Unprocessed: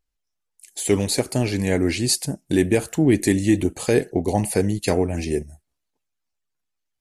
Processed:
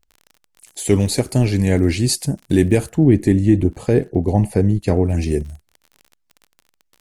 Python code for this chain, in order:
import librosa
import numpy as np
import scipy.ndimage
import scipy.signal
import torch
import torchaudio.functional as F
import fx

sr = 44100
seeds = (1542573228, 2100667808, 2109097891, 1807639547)

y = fx.low_shelf(x, sr, hz=200.0, db=11.0)
y = fx.dmg_crackle(y, sr, seeds[0], per_s=47.0, level_db=-32.0)
y = fx.high_shelf(y, sr, hz=2300.0, db=-12.0, at=(2.89, 5.05))